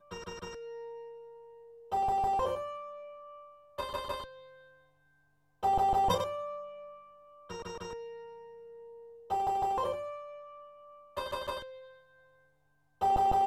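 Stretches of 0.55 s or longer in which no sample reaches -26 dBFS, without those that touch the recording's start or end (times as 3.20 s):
2.54–3.80 s
4.12–5.64 s
6.24–9.32 s
9.92–11.18 s
11.50–13.02 s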